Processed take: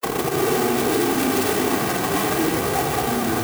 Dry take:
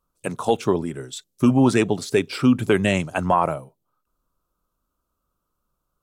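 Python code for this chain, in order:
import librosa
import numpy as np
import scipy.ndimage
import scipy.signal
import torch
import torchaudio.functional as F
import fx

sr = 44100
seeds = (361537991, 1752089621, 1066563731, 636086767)

y = fx.block_reorder(x, sr, ms=100.0, group=5)
y = fx.echo_pitch(y, sr, ms=641, semitones=-5, count=3, db_per_echo=-3.0)
y = fx.high_shelf(y, sr, hz=2200.0, db=-5.0)
y = fx.echo_split(y, sr, split_hz=510.0, low_ms=151, high_ms=347, feedback_pct=52, wet_db=-6.5)
y = fx.granulator(y, sr, seeds[0], grain_ms=100.0, per_s=20.0, spray_ms=100.0, spread_st=0)
y = fx.high_shelf(y, sr, hz=4500.0, db=11.0)
y = fx.schmitt(y, sr, flips_db=-35.0)
y = y + 0.59 * np.pad(y, (int(2.6 * sr / 1000.0), 0))[:len(y)]
y = fx.echo_multitap(y, sr, ms=(63, 158, 163, 221, 678), db=(-7.5, -15.5, -10.0, -6.0, -18.0))
y = fx.stretch_vocoder(y, sr, factor=0.57)
y = scipy.signal.sosfilt(scipy.signal.butter(2, 160.0, 'highpass', fs=sr, output='sos'), y)
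y = fx.clock_jitter(y, sr, seeds[1], jitter_ms=0.057)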